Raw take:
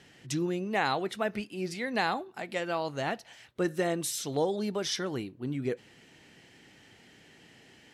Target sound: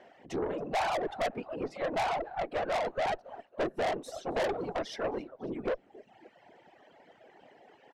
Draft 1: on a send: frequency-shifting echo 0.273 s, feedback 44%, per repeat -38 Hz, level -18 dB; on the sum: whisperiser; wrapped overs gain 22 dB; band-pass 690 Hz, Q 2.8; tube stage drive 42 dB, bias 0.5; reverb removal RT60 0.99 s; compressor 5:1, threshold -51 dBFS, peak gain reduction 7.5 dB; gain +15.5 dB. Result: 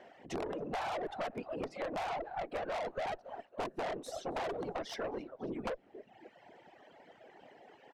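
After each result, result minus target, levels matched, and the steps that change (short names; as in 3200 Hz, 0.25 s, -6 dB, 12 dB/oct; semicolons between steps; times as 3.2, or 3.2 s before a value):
wrapped overs: distortion +21 dB; compressor: peak gain reduction +7.5 dB
change: wrapped overs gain 15 dB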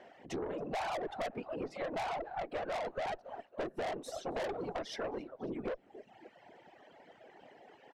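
compressor: peak gain reduction +7.5 dB
remove: compressor 5:1, threshold -51 dBFS, peak gain reduction 7.5 dB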